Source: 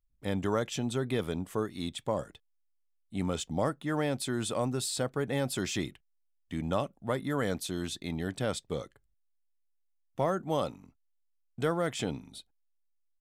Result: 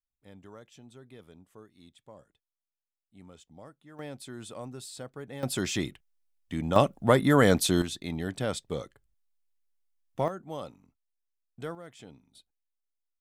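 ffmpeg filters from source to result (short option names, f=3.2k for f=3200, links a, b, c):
-af "asetnsamples=n=441:p=0,asendcmd='3.99 volume volume -10dB;5.43 volume volume 2.5dB;6.76 volume volume 10.5dB;7.82 volume volume 1dB;10.28 volume volume -8dB;11.75 volume volume -16dB;12.35 volume volume -9.5dB',volume=-19.5dB"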